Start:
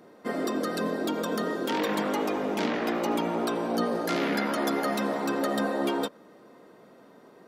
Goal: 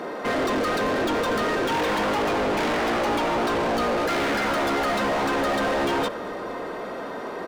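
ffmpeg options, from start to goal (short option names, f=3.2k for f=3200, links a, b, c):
-filter_complex "[0:a]asplit=2[a][b];[b]highpass=f=720:p=1,volume=35dB,asoftclip=type=tanh:threshold=-15dB[c];[a][c]amix=inputs=2:normalize=0,lowpass=f=2.2k:p=1,volume=-6dB,asplit=6[d][e][f][g][h][i];[e]adelay=232,afreqshift=-81,volume=-22dB[j];[f]adelay=464,afreqshift=-162,volume=-25.9dB[k];[g]adelay=696,afreqshift=-243,volume=-29.8dB[l];[h]adelay=928,afreqshift=-324,volume=-33.6dB[m];[i]adelay=1160,afreqshift=-405,volume=-37.5dB[n];[d][j][k][l][m][n]amix=inputs=6:normalize=0,volume=-2dB"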